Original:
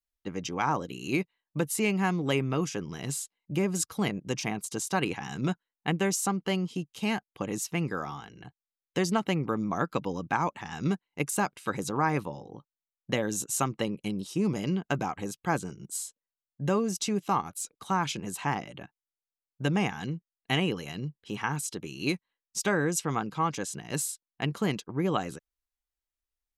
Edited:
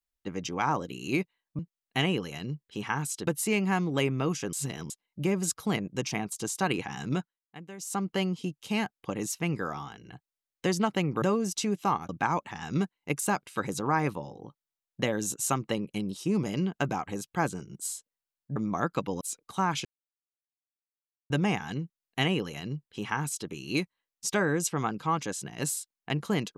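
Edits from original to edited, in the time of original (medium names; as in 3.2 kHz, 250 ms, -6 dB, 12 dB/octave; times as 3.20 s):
2.85–3.22 s: reverse
5.44–6.38 s: dip -17 dB, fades 0.29 s
9.54–10.19 s: swap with 16.66–17.53 s
18.17–19.62 s: mute
20.13–21.81 s: copy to 1.59 s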